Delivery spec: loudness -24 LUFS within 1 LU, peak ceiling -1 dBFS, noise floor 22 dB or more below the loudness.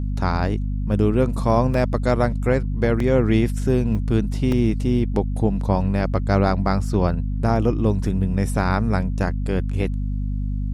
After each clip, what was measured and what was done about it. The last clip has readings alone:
dropouts 5; longest dropout 2.7 ms; hum 50 Hz; harmonics up to 250 Hz; hum level -21 dBFS; loudness -21.5 LUFS; peak -5.5 dBFS; loudness target -24.0 LUFS
-> interpolate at 1.74/3/3.95/4.52/5.37, 2.7 ms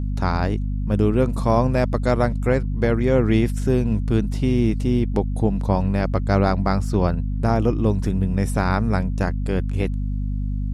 dropouts 0; hum 50 Hz; harmonics up to 250 Hz; hum level -21 dBFS
-> de-hum 50 Hz, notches 5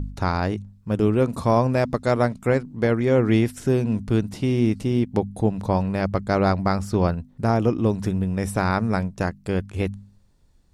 hum none; loudness -23.0 LUFS; peak -7.5 dBFS; loudness target -24.0 LUFS
-> gain -1 dB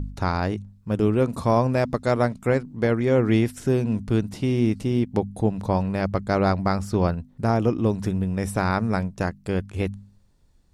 loudness -24.0 LUFS; peak -8.5 dBFS; noise floor -57 dBFS

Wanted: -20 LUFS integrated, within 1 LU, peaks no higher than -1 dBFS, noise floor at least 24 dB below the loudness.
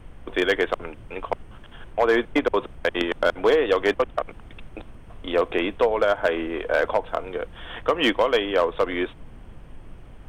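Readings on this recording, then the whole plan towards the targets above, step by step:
clipped 0.4%; flat tops at -11.5 dBFS; noise floor -44 dBFS; noise floor target -48 dBFS; loudness -23.5 LUFS; peak -11.5 dBFS; loudness target -20.0 LUFS
-> clip repair -11.5 dBFS; noise print and reduce 6 dB; gain +3.5 dB

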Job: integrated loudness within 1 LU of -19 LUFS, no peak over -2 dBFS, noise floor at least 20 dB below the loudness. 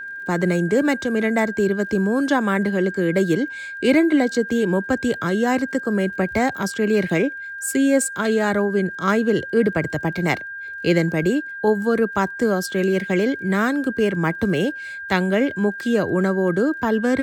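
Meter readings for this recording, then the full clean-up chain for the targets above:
ticks 24/s; steady tone 1600 Hz; tone level -30 dBFS; loudness -20.5 LUFS; peak -6.0 dBFS; loudness target -19.0 LUFS
-> de-click; notch 1600 Hz, Q 30; gain +1.5 dB

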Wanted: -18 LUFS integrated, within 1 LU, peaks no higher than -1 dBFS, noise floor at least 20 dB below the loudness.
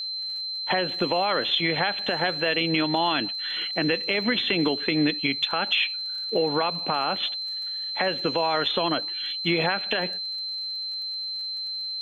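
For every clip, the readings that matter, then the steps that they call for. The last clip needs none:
ticks 31/s; steady tone 4100 Hz; tone level -29 dBFS; loudness -25.0 LUFS; peak -10.5 dBFS; loudness target -18.0 LUFS
-> de-click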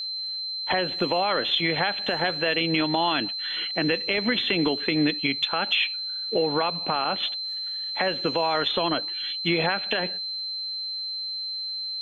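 ticks 0.17/s; steady tone 4100 Hz; tone level -29 dBFS
-> notch 4100 Hz, Q 30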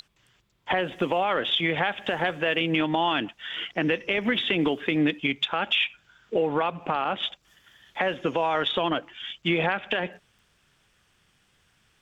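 steady tone none; loudness -26.0 LUFS; peak -11.5 dBFS; loudness target -18.0 LUFS
-> gain +8 dB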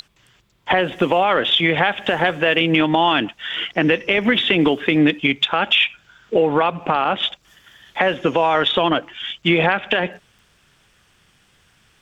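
loudness -18.0 LUFS; peak -3.5 dBFS; noise floor -58 dBFS

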